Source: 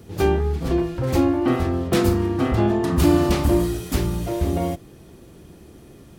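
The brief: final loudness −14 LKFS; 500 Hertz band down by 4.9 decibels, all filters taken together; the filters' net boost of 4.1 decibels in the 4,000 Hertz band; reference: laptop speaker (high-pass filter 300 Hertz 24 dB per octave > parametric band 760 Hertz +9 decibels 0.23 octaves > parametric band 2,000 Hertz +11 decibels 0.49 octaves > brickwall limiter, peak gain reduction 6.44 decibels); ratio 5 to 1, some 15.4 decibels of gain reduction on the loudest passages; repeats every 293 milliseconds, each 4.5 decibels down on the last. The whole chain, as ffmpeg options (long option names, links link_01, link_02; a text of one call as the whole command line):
ffmpeg -i in.wav -af "equalizer=frequency=500:width_type=o:gain=-8,equalizer=frequency=4000:width_type=o:gain=4,acompressor=threshold=-33dB:ratio=5,highpass=frequency=300:width=0.5412,highpass=frequency=300:width=1.3066,equalizer=frequency=760:width_type=o:width=0.23:gain=9,equalizer=frequency=2000:width_type=o:width=0.49:gain=11,aecho=1:1:293|586|879|1172|1465|1758|2051|2344|2637:0.596|0.357|0.214|0.129|0.0772|0.0463|0.0278|0.0167|0.01,volume=24dB,alimiter=limit=-4dB:level=0:latency=1" out.wav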